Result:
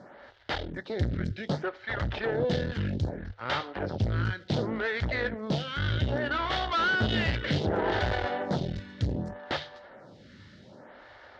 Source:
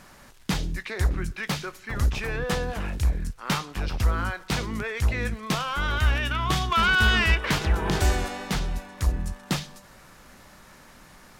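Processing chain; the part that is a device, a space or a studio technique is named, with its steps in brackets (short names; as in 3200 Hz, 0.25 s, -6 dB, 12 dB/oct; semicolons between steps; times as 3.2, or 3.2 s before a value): vibe pedal into a guitar amplifier (photocell phaser 0.65 Hz; tube stage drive 30 dB, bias 0.7; speaker cabinet 97–4000 Hz, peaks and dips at 100 Hz +8 dB, 170 Hz -3 dB, 570 Hz +5 dB, 1100 Hz -9 dB, 2500 Hz -10 dB); gain +9 dB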